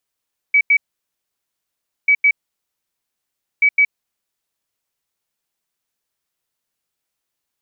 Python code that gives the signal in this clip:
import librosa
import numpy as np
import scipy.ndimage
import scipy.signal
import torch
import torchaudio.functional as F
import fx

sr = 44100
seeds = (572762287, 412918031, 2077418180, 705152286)

y = fx.beep_pattern(sr, wave='sine', hz=2280.0, on_s=0.07, off_s=0.09, beeps=2, pause_s=1.31, groups=3, level_db=-9.0)